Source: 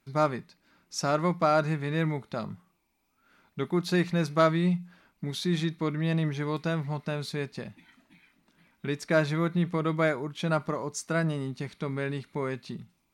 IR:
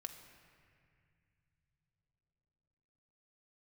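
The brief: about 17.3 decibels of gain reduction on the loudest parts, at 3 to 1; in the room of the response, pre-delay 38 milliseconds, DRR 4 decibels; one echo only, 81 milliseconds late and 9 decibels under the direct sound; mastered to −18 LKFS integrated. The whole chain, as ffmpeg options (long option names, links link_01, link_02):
-filter_complex "[0:a]acompressor=threshold=-43dB:ratio=3,aecho=1:1:81:0.355,asplit=2[link_01][link_02];[1:a]atrim=start_sample=2205,adelay=38[link_03];[link_02][link_03]afir=irnorm=-1:irlink=0,volume=-0.5dB[link_04];[link_01][link_04]amix=inputs=2:normalize=0,volume=22.5dB"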